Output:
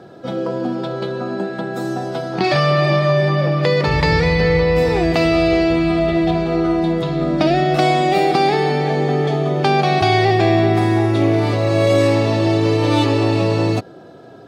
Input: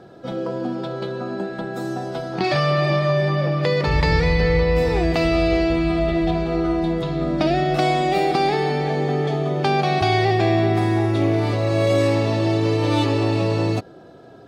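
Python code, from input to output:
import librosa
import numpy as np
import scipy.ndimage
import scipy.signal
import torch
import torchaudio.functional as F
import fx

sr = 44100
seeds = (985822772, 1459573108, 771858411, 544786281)

y = scipy.signal.sosfilt(scipy.signal.butter(2, 83.0, 'highpass', fs=sr, output='sos'), x)
y = y * librosa.db_to_amplitude(4.0)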